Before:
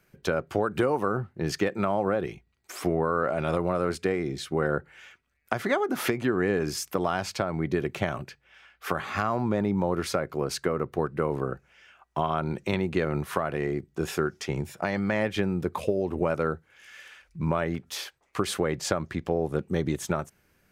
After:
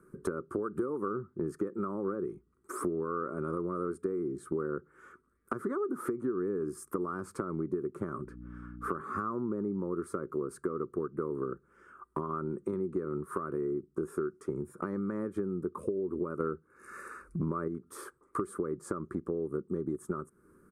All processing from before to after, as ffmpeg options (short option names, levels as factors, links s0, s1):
-filter_complex "[0:a]asettb=1/sr,asplit=3[s0][s1][s2];[s0]atrim=end=8.244[s3];[s1]atrim=start=8.24:end=9.01,asetpts=PTS-STARTPTS,afade=t=in:d=0.004:c=qsin,afade=t=out:st=0.766:d=0.004:c=qsin,highshelf=f=5700:g=-9.5,aeval=exprs='val(0)+0.00447*(sin(2*PI*60*n/s)+sin(2*PI*2*60*n/s)/2+sin(2*PI*3*60*n/s)/3+sin(2*PI*4*60*n/s)/4+sin(2*PI*5*60*n/s)/5)':c=same[s4];[s2]atrim=start=9.006[s5];[s3][s4]acrossfade=d=0.004:c1=hsin:c2=qsin[s6];[s6][s5]acrossfade=d=0.004:c1=qsin:c2=hsin,asettb=1/sr,asplit=3[s7][s8][s9];[s7]atrim=end=16.404[s10];[s8]atrim=start=16.4:end=17.68,asetpts=PTS-STARTPTS,afade=t=in:d=0.004:c=qsin,afade=t=out:st=1.276:d=0.004:c=qsin,acontrast=61,asuperstop=centerf=3200:order=20:qfactor=4.5[s11];[s9]atrim=start=17.676[s12];[s10][s11]acrossfade=d=0.004:c1=hsin:c2=qsin[s13];[s13][s12]acrossfade=d=0.004:c1=qsin:c2=hsin,firequalizer=gain_entry='entry(110,0);entry(180,7);entry(380,14);entry(710,-14);entry(1200,12);entry(1800,-10);entry(2700,-25);entry(6200,-14);entry(8900,4);entry(15000,-13)':delay=0.05:min_phase=1,acompressor=threshold=0.02:ratio=4"